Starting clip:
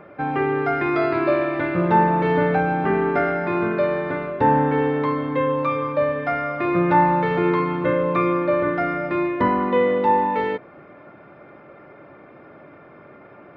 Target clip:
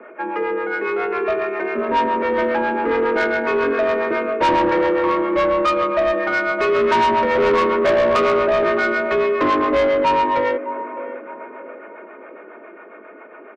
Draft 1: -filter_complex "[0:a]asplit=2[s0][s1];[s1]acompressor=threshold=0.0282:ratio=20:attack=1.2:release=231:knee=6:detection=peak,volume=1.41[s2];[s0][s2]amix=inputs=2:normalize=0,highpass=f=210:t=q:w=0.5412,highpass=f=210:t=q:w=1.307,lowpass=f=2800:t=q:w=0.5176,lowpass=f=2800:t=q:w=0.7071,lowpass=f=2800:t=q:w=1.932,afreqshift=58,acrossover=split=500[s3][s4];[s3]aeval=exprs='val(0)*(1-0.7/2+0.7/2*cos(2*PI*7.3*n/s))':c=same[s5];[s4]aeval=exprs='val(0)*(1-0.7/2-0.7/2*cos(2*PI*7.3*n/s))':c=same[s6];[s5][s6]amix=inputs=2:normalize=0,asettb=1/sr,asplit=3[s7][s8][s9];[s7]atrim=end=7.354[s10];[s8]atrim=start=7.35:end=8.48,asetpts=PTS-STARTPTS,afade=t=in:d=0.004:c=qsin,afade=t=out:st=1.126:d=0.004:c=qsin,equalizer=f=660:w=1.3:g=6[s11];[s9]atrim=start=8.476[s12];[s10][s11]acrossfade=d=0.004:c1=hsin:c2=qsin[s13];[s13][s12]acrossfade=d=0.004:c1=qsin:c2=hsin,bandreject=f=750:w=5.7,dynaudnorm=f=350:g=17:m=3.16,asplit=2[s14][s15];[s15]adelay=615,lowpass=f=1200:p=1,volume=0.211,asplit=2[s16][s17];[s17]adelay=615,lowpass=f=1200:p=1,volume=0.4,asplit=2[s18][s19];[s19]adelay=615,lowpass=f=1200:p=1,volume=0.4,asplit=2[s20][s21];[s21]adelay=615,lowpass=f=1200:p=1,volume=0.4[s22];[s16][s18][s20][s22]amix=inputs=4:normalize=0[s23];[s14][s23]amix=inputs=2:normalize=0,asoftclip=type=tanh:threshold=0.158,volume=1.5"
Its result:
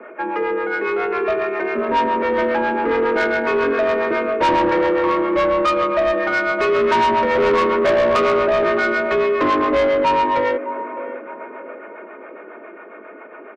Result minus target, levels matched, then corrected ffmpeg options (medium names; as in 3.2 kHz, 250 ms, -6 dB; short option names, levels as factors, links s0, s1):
compression: peak gain reduction -11 dB
-filter_complex "[0:a]asplit=2[s0][s1];[s1]acompressor=threshold=0.0075:ratio=20:attack=1.2:release=231:knee=6:detection=peak,volume=1.41[s2];[s0][s2]amix=inputs=2:normalize=0,highpass=f=210:t=q:w=0.5412,highpass=f=210:t=q:w=1.307,lowpass=f=2800:t=q:w=0.5176,lowpass=f=2800:t=q:w=0.7071,lowpass=f=2800:t=q:w=1.932,afreqshift=58,acrossover=split=500[s3][s4];[s3]aeval=exprs='val(0)*(1-0.7/2+0.7/2*cos(2*PI*7.3*n/s))':c=same[s5];[s4]aeval=exprs='val(0)*(1-0.7/2-0.7/2*cos(2*PI*7.3*n/s))':c=same[s6];[s5][s6]amix=inputs=2:normalize=0,asettb=1/sr,asplit=3[s7][s8][s9];[s7]atrim=end=7.354[s10];[s8]atrim=start=7.35:end=8.48,asetpts=PTS-STARTPTS,afade=t=in:d=0.004:c=qsin,afade=t=out:st=1.126:d=0.004:c=qsin,equalizer=f=660:w=1.3:g=6[s11];[s9]atrim=start=8.476[s12];[s10][s11]acrossfade=d=0.004:c1=hsin:c2=qsin[s13];[s13][s12]acrossfade=d=0.004:c1=qsin:c2=hsin,bandreject=f=750:w=5.7,dynaudnorm=f=350:g=17:m=3.16,asplit=2[s14][s15];[s15]adelay=615,lowpass=f=1200:p=1,volume=0.211,asplit=2[s16][s17];[s17]adelay=615,lowpass=f=1200:p=1,volume=0.4,asplit=2[s18][s19];[s19]adelay=615,lowpass=f=1200:p=1,volume=0.4,asplit=2[s20][s21];[s21]adelay=615,lowpass=f=1200:p=1,volume=0.4[s22];[s16][s18][s20][s22]amix=inputs=4:normalize=0[s23];[s14][s23]amix=inputs=2:normalize=0,asoftclip=type=tanh:threshold=0.158,volume=1.5"